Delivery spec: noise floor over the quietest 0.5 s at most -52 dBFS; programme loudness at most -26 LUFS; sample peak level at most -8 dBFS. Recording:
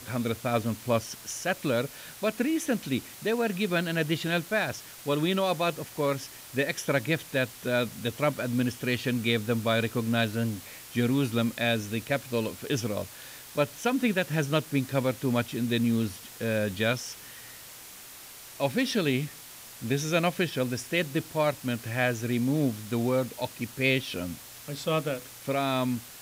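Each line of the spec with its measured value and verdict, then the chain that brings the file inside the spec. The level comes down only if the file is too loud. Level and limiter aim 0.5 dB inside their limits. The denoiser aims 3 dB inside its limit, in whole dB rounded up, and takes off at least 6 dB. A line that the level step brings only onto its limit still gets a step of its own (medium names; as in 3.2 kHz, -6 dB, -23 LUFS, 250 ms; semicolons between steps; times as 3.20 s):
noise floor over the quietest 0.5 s -46 dBFS: fail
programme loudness -29.0 LUFS: pass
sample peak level -11.5 dBFS: pass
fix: noise reduction 9 dB, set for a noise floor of -46 dBFS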